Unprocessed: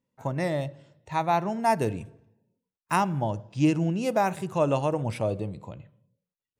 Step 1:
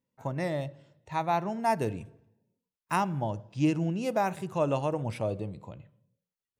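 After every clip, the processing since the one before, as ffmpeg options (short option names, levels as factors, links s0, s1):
-af "equalizer=f=8400:t=o:w=0.77:g=-2,volume=0.668"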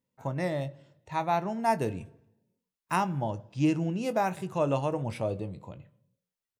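-filter_complex "[0:a]asplit=2[s0][s1];[s1]adelay=22,volume=0.224[s2];[s0][s2]amix=inputs=2:normalize=0"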